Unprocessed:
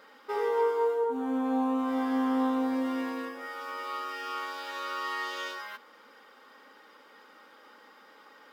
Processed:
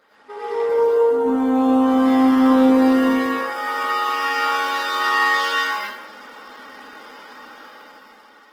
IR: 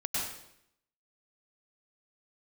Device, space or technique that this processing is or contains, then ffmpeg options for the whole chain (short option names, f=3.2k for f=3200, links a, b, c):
far-field microphone of a smart speaker: -filter_complex "[1:a]atrim=start_sample=2205[a];[0:a][a]afir=irnorm=-1:irlink=0,highpass=94,dynaudnorm=f=250:g=9:m=11.5dB,volume=-1.5dB" -ar 48000 -c:a libopus -b:a 16k